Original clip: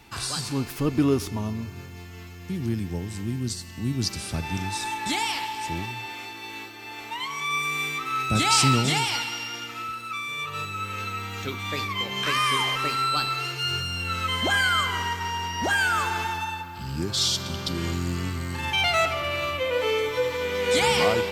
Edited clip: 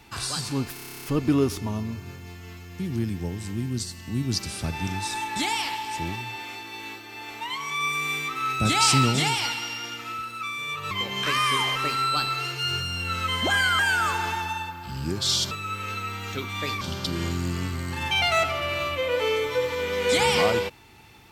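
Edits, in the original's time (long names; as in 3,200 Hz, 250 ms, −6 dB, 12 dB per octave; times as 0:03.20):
0:00.74: stutter 0.03 s, 11 plays
0:10.61–0:11.91: move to 0:17.43
0:14.79–0:15.71: remove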